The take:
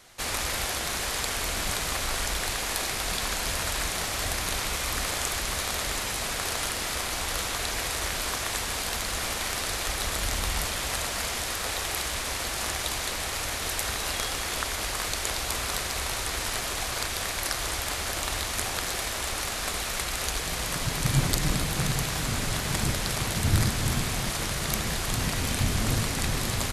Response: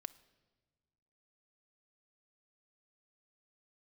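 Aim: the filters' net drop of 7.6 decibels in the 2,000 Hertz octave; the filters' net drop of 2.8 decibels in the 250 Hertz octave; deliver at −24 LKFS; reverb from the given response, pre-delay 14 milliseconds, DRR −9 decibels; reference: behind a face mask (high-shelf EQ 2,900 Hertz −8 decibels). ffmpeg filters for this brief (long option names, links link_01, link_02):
-filter_complex "[0:a]equalizer=frequency=250:width_type=o:gain=-4,equalizer=frequency=2000:width_type=o:gain=-6.5,asplit=2[link_01][link_02];[1:a]atrim=start_sample=2205,adelay=14[link_03];[link_02][link_03]afir=irnorm=-1:irlink=0,volume=13.5dB[link_04];[link_01][link_04]amix=inputs=2:normalize=0,highshelf=frequency=2900:gain=-8,volume=-0.5dB"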